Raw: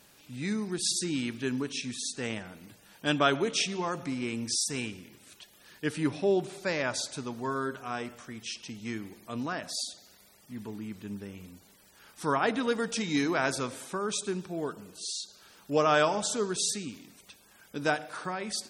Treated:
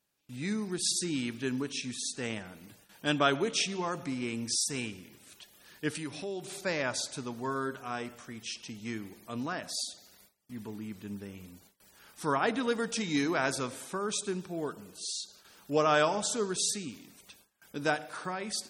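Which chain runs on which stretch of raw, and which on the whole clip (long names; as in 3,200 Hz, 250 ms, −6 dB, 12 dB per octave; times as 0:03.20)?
0:05.95–0:06.61: downward compressor 2 to 1, threshold −41 dBFS + high-shelf EQ 2,200 Hz +9.5 dB
whole clip: noise gate with hold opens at −45 dBFS; high-shelf EQ 11,000 Hz +4 dB; level −1.5 dB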